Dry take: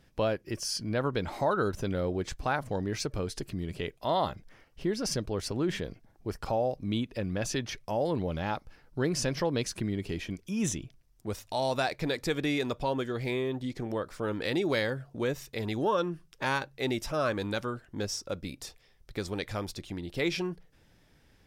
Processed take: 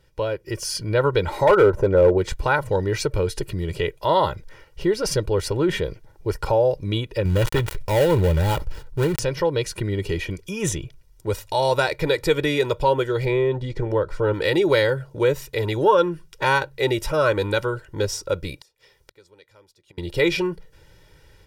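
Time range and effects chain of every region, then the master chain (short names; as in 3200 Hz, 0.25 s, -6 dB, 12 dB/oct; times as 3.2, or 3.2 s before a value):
1.47–2.18 EQ curve 160 Hz 0 dB, 580 Hz +7 dB, 1100 Hz +4 dB, 2400 Hz -8 dB, 3500 Hz -15 dB + overloaded stage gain 20.5 dB
7.25–9.19 switching dead time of 0.23 ms + low shelf 130 Hz +10.5 dB + sustainer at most 120 dB/s
13.25–14.34 LPF 2200 Hz 6 dB/oct + low shelf 72 Hz +10 dB
18.56–19.98 HPF 200 Hz 6 dB/oct + flipped gate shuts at -34 dBFS, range -27 dB
whole clip: comb 2.1 ms, depth 80%; dynamic EQ 5800 Hz, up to -5 dB, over -50 dBFS, Q 1.2; AGC gain up to 8 dB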